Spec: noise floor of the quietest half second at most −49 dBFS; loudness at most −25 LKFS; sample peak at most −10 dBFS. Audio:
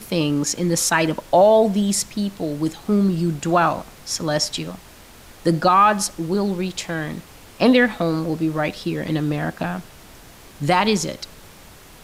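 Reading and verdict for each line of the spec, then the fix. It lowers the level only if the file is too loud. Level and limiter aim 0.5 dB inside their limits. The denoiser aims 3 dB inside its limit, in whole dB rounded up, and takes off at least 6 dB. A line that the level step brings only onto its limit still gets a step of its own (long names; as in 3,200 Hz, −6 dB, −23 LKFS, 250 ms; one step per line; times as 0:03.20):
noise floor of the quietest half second −44 dBFS: out of spec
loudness −20.0 LKFS: out of spec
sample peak −5.5 dBFS: out of spec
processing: level −5.5 dB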